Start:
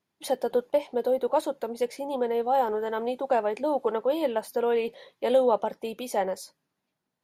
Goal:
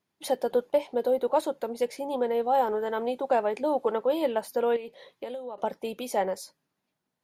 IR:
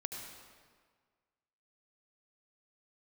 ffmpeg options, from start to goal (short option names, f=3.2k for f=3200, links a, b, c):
-filter_complex "[0:a]asettb=1/sr,asplit=3[a][b][c];[a]atrim=end=4.764[d];[b]atrim=start=4.76:end=5.58,asetpts=PTS-STARTPTS,afade=t=in:d=0.004:c=qsin,afade=t=out:st=0.816:d=0.004:c=qsin,acompressor=threshold=-34dB:ratio=16[e];[c]atrim=start=5.576[f];[d][e]acrossfade=d=0.004:c1=hsin:c2=qsin[g];[g][f]acrossfade=d=0.004:c1=qsin:c2=hsin"